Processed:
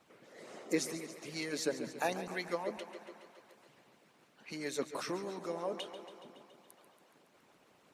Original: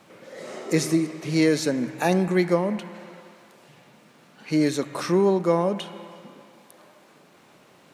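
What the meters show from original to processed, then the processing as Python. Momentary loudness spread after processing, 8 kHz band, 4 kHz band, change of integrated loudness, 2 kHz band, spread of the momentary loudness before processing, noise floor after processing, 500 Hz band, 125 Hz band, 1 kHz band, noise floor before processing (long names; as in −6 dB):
20 LU, −9.0 dB, −9.5 dB, −15.5 dB, −10.0 dB, 17 LU, −68 dBFS, −15.0 dB, −22.5 dB, −12.0 dB, −55 dBFS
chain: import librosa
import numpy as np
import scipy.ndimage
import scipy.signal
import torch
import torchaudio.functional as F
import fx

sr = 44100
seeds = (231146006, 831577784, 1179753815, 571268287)

y = fx.echo_thinned(x, sr, ms=140, feedback_pct=71, hz=160.0, wet_db=-11)
y = fx.hpss(y, sr, part='harmonic', gain_db=-17)
y = y * librosa.db_to_amplitude(-7.5)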